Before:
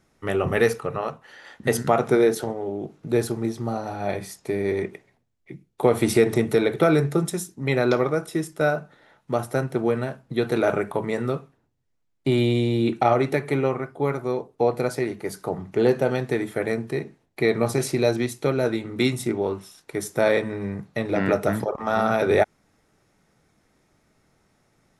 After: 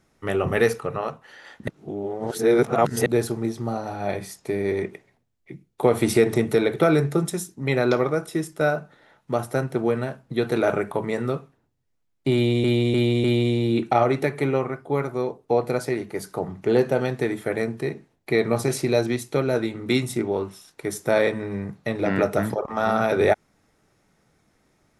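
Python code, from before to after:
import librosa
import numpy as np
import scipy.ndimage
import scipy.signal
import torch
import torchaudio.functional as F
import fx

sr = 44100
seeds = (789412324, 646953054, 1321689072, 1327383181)

y = fx.edit(x, sr, fx.reverse_span(start_s=1.68, length_s=1.38),
    fx.repeat(start_s=12.34, length_s=0.3, count=4), tone=tone)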